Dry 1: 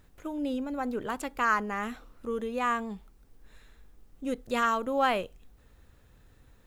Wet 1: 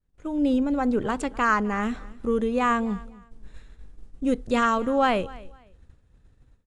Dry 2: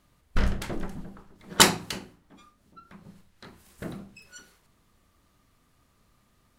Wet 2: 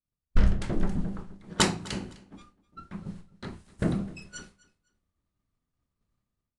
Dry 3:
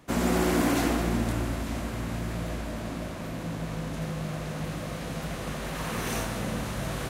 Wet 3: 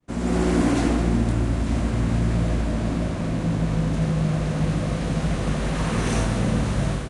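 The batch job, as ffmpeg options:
ffmpeg -i in.wav -af "agate=range=-33dB:threshold=-48dB:ratio=3:detection=peak,lowshelf=frequency=350:gain=9,dynaudnorm=framelen=110:gausssize=5:maxgain=12dB,aecho=1:1:254|508:0.0891|0.0214,aresample=22050,aresample=44100,volume=-7.5dB" out.wav

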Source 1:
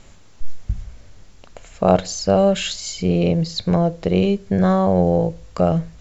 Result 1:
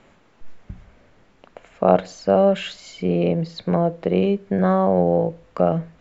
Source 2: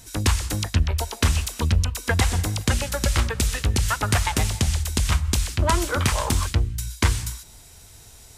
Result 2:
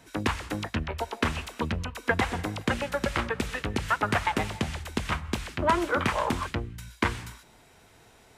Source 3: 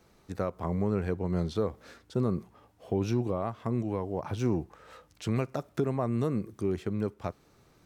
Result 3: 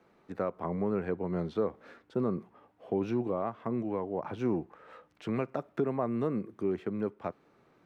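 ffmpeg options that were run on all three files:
ffmpeg -i in.wav -filter_complex "[0:a]acrossover=split=160 2900:gain=0.158 1 0.141[link_01][link_02][link_03];[link_01][link_02][link_03]amix=inputs=3:normalize=0" out.wav

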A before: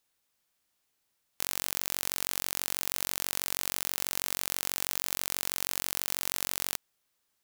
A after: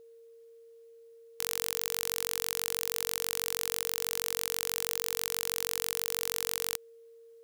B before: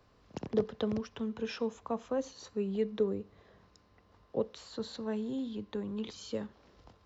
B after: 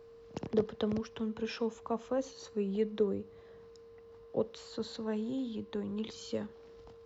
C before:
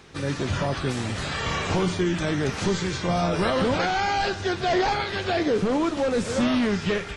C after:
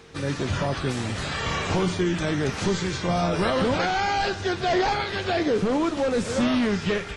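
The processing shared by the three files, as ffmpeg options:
ffmpeg -i in.wav -af "aeval=exprs='val(0)+0.00251*sin(2*PI*460*n/s)':channel_layout=same" out.wav

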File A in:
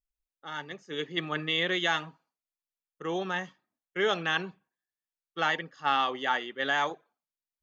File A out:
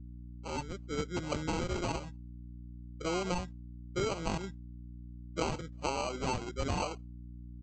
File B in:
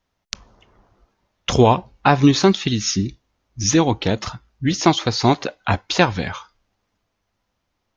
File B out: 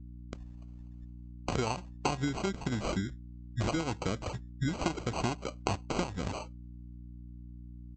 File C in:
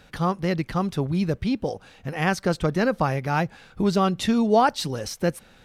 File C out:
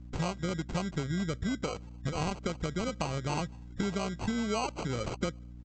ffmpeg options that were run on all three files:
ffmpeg -i in.wav -af "afftdn=noise_reduction=17:noise_floor=-40,acompressor=threshold=-30dB:ratio=12,aresample=16000,acrusher=samples=9:mix=1:aa=0.000001,aresample=44100,aeval=exprs='val(0)+0.00501*(sin(2*PI*60*n/s)+sin(2*PI*2*60*n/s)/2+sin(2*PI*3*60*n/s)/3+sin(2*PI*4*60*n/s)/4+sin(2*PI*5*60*n/s)/5)':channel_layout=same,volume=1dB" out.wav

